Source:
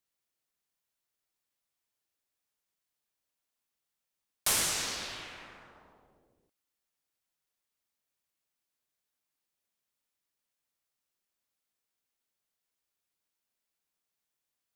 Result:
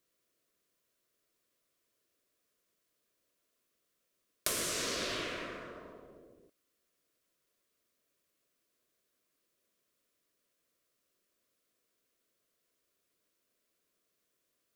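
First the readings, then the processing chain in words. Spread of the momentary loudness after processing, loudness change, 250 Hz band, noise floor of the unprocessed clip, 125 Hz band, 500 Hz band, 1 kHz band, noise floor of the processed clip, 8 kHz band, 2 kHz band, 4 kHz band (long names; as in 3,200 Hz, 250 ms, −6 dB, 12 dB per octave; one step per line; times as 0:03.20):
17 LU, −5.5 dB, +5.0 dB, below −85 dBFS, −0.5 dB, +6.0 dB, −2.0 dB, −81 dBFS, −5.5 dB, −1.5 dB, −3.0 dB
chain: parametric band 410 Hz +10 dB 2 octaves
downward compressor 12 to 1, threshold −36 dBFS, peak gain reduction 13.5 dB
Butterworth band-reject 830 Hz, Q 3.1
level +5 dB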